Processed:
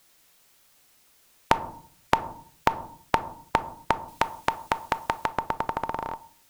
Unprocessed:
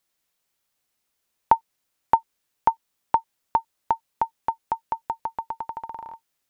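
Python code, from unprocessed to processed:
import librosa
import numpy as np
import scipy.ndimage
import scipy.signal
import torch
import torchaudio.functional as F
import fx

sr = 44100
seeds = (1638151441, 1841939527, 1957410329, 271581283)

y = fx.tilt_shelf(x, sr, db=-5.0, hz=970.0, at=(4.08, 5.26))
y = fx.room_shoebox(y, sr, seeds[0], volume_m3=450.0, walls='furnished', distance_m=0.33)
y = fx.spectral_comp(y, sr, ratio=2.0)
y = y * 10.0 ** (2.0 / 20.0)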